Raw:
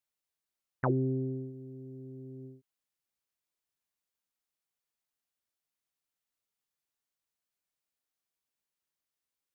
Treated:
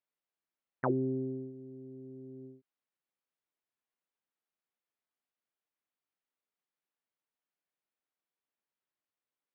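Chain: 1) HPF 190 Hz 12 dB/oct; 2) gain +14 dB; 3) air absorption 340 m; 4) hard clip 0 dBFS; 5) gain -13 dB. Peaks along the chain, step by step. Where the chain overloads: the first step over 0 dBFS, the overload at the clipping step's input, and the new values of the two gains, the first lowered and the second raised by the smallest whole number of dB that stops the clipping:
-16.5, -2.5, -4.0, -4.0, -17.0 dBFS; no overload

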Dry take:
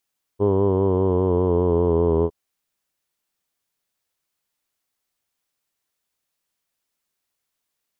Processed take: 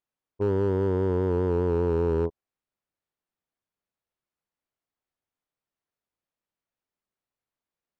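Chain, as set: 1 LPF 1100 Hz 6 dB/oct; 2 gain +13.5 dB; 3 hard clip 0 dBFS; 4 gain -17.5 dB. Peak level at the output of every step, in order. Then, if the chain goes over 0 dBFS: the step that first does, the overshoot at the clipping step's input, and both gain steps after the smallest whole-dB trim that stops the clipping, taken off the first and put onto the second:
-9.0, +4.5, 0.0, -17.5 dBFS; step 2, 4.5 dB; step 2 +8.5 dB, step 4 -12.5 dB

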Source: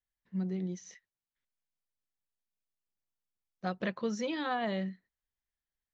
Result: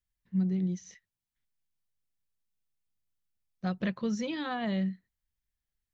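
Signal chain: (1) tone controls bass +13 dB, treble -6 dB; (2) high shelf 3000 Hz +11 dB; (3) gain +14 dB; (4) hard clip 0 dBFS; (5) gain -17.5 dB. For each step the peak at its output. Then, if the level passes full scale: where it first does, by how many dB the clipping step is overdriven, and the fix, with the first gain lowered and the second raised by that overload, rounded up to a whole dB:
-17.5, -17.5, -3.5, -3.5, -21.0 dBFS; no overload

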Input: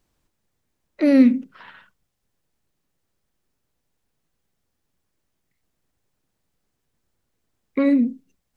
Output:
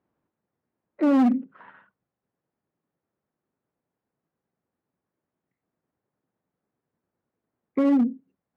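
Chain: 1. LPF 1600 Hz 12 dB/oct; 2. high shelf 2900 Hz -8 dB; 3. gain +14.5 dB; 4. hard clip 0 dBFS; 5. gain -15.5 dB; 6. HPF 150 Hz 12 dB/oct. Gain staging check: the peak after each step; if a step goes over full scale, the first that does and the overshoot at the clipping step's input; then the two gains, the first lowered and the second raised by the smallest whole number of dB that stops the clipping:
-5.0, -5.0, +9.5, 0.0, -15.5, -10.5 dBFS; step 3, 9.5 dB; step 3 +4.5 dB, step 5 -5.5 dB

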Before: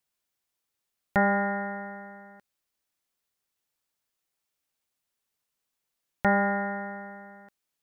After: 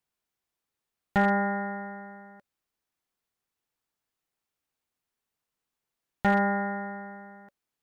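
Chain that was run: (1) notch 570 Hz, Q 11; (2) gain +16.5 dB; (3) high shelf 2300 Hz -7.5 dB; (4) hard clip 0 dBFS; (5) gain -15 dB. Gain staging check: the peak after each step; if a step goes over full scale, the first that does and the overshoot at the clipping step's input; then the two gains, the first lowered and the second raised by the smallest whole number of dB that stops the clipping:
-11.0, +5.5, +4.5, 0.0, -15.0 dBFS; step 2, 4.5 dB; step 2 +11.5 dB, step 5 -10 dB

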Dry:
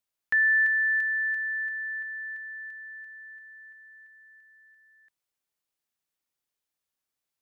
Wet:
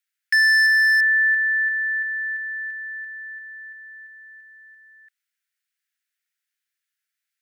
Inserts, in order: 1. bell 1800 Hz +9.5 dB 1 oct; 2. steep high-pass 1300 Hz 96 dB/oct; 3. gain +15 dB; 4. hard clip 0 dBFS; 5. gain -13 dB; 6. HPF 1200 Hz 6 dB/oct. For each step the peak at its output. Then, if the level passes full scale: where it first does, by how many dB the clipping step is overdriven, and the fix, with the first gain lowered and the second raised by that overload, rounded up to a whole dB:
-9.0, -8.5, +6.5, 0.0, -13.0, -10.5 dBFS; step 3, 6.5 dB; step 3 +8 dB, step 5 -6 dB

